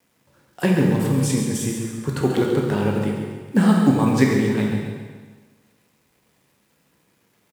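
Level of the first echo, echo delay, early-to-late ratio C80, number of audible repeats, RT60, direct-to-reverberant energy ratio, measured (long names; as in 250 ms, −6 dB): −8.0 dB, 137 ms, 2.5 dB, 1, 1.4 s, −1.5 dB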